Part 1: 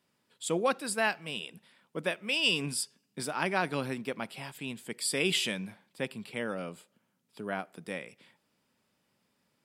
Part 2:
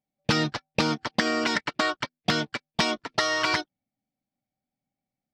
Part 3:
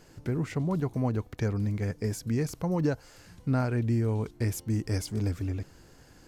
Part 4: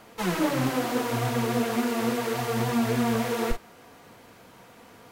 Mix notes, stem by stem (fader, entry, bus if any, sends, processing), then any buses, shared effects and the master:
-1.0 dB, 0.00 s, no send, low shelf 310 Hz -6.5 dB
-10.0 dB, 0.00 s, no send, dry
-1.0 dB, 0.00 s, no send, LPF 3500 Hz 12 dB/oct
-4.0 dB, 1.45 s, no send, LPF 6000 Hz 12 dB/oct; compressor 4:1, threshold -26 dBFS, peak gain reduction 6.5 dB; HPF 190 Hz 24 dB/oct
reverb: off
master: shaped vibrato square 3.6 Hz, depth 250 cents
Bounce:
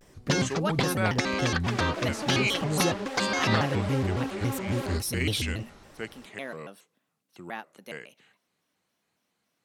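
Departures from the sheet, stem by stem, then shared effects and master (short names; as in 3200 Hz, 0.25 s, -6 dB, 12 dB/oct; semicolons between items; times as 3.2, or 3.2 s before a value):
stem 2 -10.0 dB -> -3.5 dB; stem 3: missing LPF 3500 Hz 12 dB/oct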